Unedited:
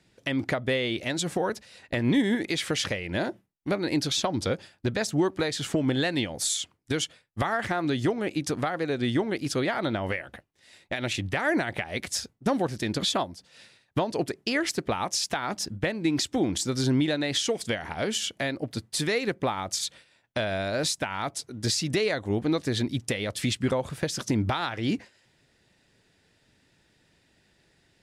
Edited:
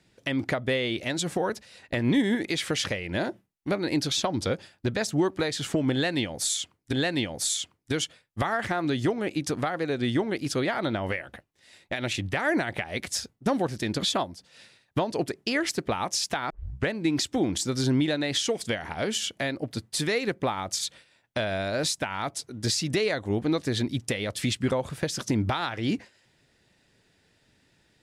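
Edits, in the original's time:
0:05.93–0:06.93: repeat, 2 plays
0:15.50: tape start 0.39 s

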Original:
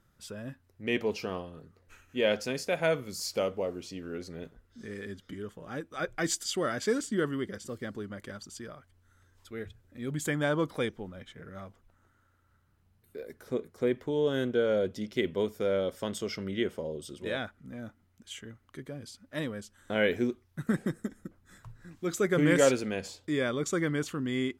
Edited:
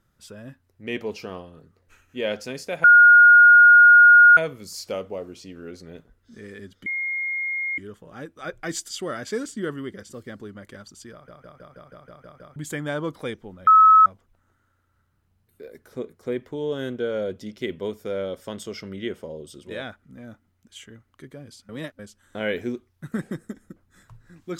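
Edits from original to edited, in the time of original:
0:02.84: insert tone 1,430 Hz −7.5 dBFS 1.53 s
0:05.33: insert tone 2,140 Hz −24 dBFS 0.92 s
0:08.67: stutter in place 0.16 s, 9 plays
0:11.22–0:11.61: beep over 1,290 Hz −9 dBFS
0:19.24–0:19.54: reverse

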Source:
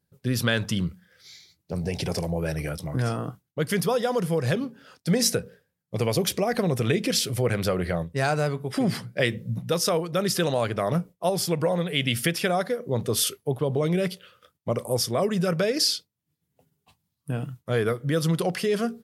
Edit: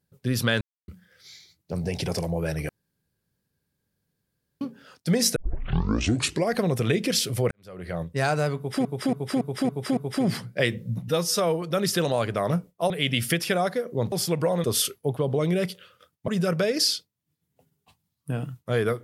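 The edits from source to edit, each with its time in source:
0:00.61–0:00.88: silence
0:02.69–0:04.61: fill with room tone
0:05.36: tape start 1.18 s
0:07.51–0:08.06: fade in quadratic
0:08.57–0:08.85: repeat, 6 plays
0:09.68–0:10.04: time-stretch 1.5×
0:11.32–0:11.84: move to 0:13.06
0:14.70–0:15.28: remove

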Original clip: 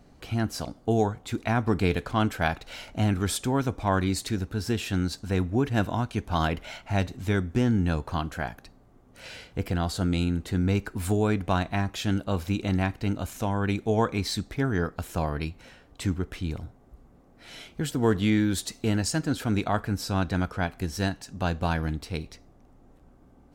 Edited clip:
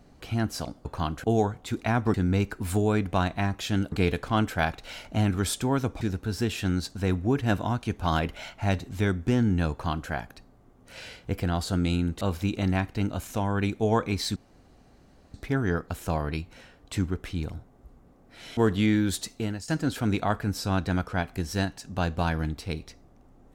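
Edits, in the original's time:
0:03.84–0:04.29: remove
0:07.99–0:08.38: duplicate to 0:00.85
0:10.49–0:12.27: move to 0:01.75
0:14.42: splice in room tone 0.98 s
0:17.65–0:18.01: remove
0:18.66–0:19.12: fade out, to −15.5 dB

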